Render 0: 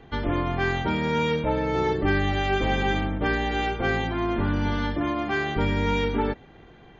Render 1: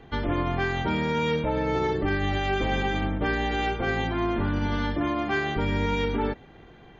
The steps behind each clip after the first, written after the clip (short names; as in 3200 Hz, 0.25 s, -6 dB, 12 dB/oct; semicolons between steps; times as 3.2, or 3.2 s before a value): limiter -17 dBFS, peak gain reduction 5.5 dB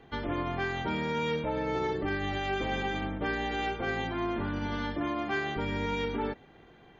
low shelf 120 Hz -7 dB; gain -4.5 dB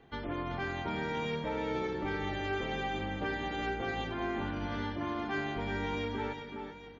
tapped delay 0.183/0.378/0.411/0.832 s -17/-7.5/-13.5/-13.5 dB; gain -4.5 dB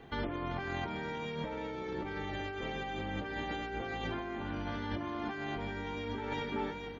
negative-ratio compressor -40 dBFS, ratio -1; gain +2 dB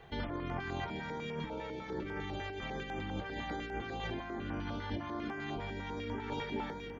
stepped notch 10 Hz 270–4000 Hz